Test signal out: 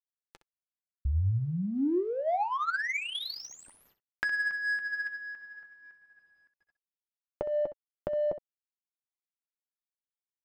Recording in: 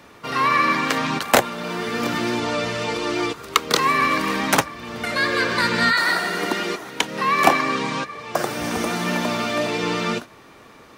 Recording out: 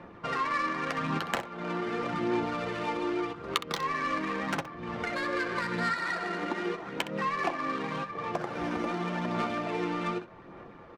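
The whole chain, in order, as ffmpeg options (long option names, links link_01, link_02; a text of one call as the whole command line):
ffmpeg -i in.wav -af "aecho=1:1:5.8:0.35,acompressor=threshold=-28dB:ratio=4,aphaser=in_gain=1:out_gain=1:delay=3.5:decay=0.33:speed=0.85:type=sinusoidal,acrusher=bits=9:mix=0:aa=0.000001,adynamicsmooth=sensitivity=2:basefreq=1600,aecho=1:1:11|64:0.237|0.224,volume=-2dB" out.wav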